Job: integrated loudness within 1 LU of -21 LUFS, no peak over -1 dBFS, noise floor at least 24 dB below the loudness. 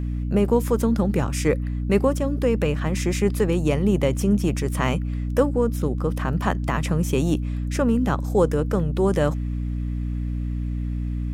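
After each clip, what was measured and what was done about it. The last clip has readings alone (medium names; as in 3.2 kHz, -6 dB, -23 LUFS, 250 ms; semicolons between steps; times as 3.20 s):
hum 60 Hz; highest harmonic 300 Hz; hum level -24 dBFS; loudness -23.0 LUFS; peak level -6.0 dBFS; loudness target -21.0 LUFS
-> de-hum 60 Hz, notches 5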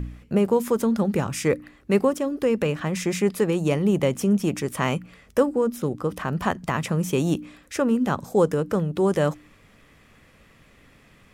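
hum not found; loudness -24.0 LUFS; peak level -7.0 dBFS; loudness target -21.0 LUFS
-> trim +3 dB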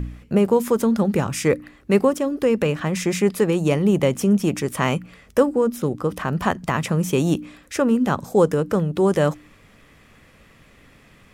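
loudness -21.0 LUFS; peak level -4.0 dBFS; noise floor -52 dBFS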